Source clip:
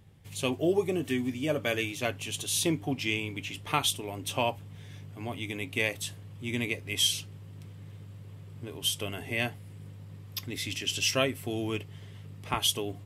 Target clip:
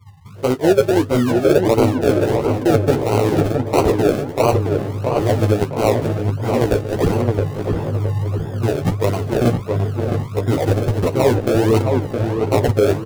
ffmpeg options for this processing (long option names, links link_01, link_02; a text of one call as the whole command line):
ffmpeg -i in.wav -filter_complex "[0:a]afftdn=noise_reduction=34:noise_floor=-42,asplit=2[link_01][link_02];[link_02]acrusher=bits=3:mix=0:aa=0.000001,volume=-6dB[link_03];[link_01][link_03]amix=inputs=2:normalize=0,lowpass=frequency=2800:width=0.5412,lowpass=frequency=2800:width=1.3066,areverse,acompressor=threshold=-35dB:ratio=8,areverse,acrusher=samples=36:mix=1:aa=0.000001:lfo=1:lforange=21.6:lforate=1.5,equalizer=frequency=460:width=1.2:gain=11.5,asplit=2[link_04][link_05];[link_05]adelay=666,lowpass=frequency=2000:poles=1,volume=-4dB,asplit=2[link_06][link_07];[link_07]adelay=666,lowpass=frequency=2000:poles=1,volume=0.49,asplit=2[link_08][link_09];[link_09]adelay=666,lowpass=frequency=2000:poles=1,volume=0.49,asplit=2[link_10][link_11];[link_11]adelay=666,lowpass=frequency=2000:poles=1,volume=0.49,asplit=2[link_12][link_13];[link_13]adelay=666,lowpass=frequency=2000:poles=1,volume=0.49,asplit=2[link_14][link_15];[link_15]adelay=666,lowpass=frequency=2000:poles=1,volume=0.49[link_16];[link_04][link_06][link_08][link_10][link_12][link_14][link_16]amix=inputs=7:normalize=0,adynamicequalizer=threshold=0.00178:dfrequency=110:dqfactor=1.4:tfrequency=110:tqfactor=1.4:attack=5:release=100:ratio=0.375:range=3.5:mode=boostabove:tftype=bell,flanger=delay=8.3:depth=8.7:regen=-4:speed=1.1:shape=sinusoidal,alimiter=level_in=20dB:limit=-1dB:release=50:level=0:latency=1,volume=-1dB" out.wav